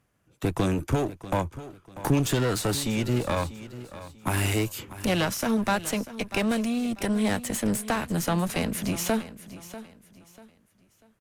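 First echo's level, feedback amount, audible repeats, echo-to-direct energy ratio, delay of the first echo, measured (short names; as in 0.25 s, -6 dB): -15.0 dB, 31%, 2, -14.5 dB, 0.642 s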